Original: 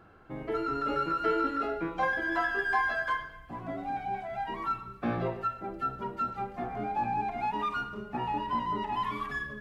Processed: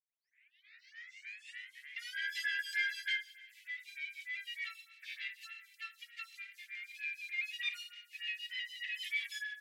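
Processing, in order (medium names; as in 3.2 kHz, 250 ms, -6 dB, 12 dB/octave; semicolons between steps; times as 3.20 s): tape start-up on the opening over 2.25 s; steep high-pass 1.9 kHz 72 dB/octave; lamp-driven phase shifter 3.3 Hz; trim +12 dB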